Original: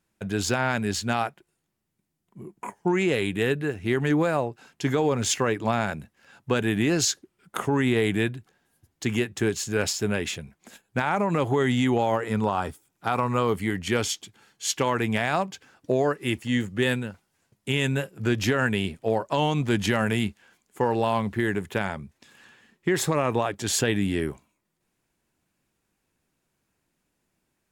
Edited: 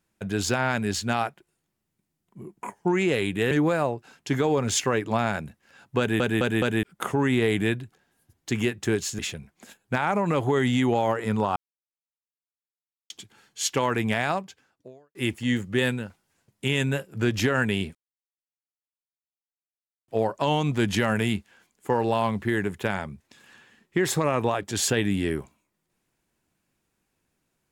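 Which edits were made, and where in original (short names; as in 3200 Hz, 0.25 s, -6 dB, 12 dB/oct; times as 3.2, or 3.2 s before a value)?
3.51–4.05 cut
6.53 stutter in place 0.21 s, 4 plays
9.73–10.23 cut
12.6–14.14 mute
15.28–16.19 fade out quadratic
18.99 insert silence 2.13 s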